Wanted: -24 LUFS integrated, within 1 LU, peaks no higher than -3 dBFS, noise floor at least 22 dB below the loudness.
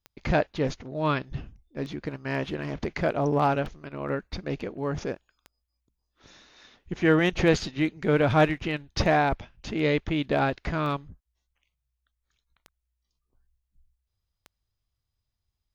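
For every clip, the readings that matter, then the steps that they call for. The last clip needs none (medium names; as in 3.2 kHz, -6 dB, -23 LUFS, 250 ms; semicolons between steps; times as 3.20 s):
clicks found 9; loudness -27.0 LUFS; peak level -8.5 dBFS; loudness target -24.0 LUFS
-> de-click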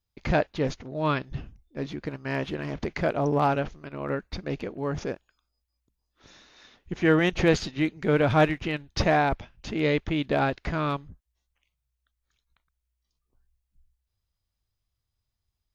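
clicks found 0; loudness -27.0 LUFS; peak level -8.5 dBFS; loudness target -24.0 LUFS
-> trim +3 dB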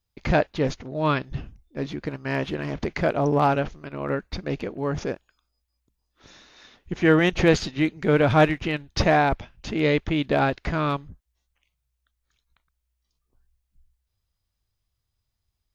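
loudness -24.0 LUFS; peak level -5.5 dBFS; noise floor -79 dBFS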